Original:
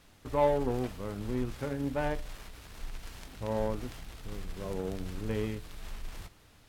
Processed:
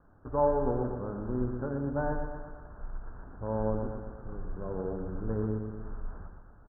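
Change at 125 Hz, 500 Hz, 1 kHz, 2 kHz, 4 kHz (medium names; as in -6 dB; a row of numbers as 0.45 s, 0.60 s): +2.0 dB, +1.0 dB, +1.0 dB, -3.5 dB, under -35 dB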